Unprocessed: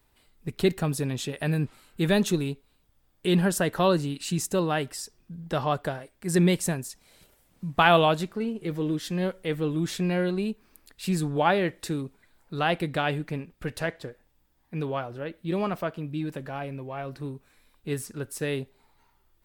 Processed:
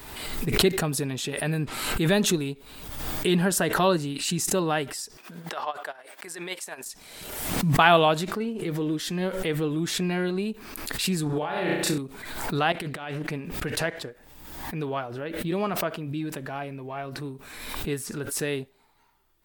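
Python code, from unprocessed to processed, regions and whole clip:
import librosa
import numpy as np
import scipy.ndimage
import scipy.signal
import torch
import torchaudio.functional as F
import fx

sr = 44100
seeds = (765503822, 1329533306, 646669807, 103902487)

y = fx.chain(x, sr, fx.highpass(hz=690.0, slope=12),
    fx.high_shelf(hz=3900.0, db=-6.0),
    fx.tremolo_db(hz=9.6, depth_db=21), at=(5.17, 6.86))
y = fx.chain(y, sr, fx.room_flutter(wall_m=5.7, rt60_s=0.57),
    fx.over_compress(threshold_db=-27.0, ratio=-1.0), at=(11.26, 11.98))
y = fx.chain(y, sr, fx.low_shelf(hz=160.0, db=-2.5),
    fx.over_compress(threshold_db=-32.0, ratio=-0.5),
    fx.doppler_dist(depth_ms=0.4), at=(12.72, 13.31))
y = fx.low_shelf(y, sr, hz=140.0, db=-8.0)
y = fx.notch(y, sr, hz=530.0, q=12.0)
y = fx.pre_swell(y, sr, db_per_s=42.0)
y = F.gain(torch.from_numpy(y), 1.5).numpy()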